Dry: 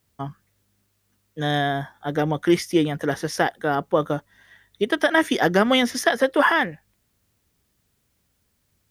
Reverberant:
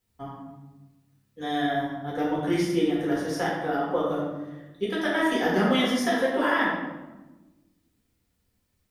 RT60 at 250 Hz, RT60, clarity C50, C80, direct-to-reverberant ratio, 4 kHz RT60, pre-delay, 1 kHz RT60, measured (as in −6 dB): 1.6 s, 1.2 s, 1.0 dB, 3.5 dB, −6.5 dB, 0.70 s, 4 ms, 1.0 s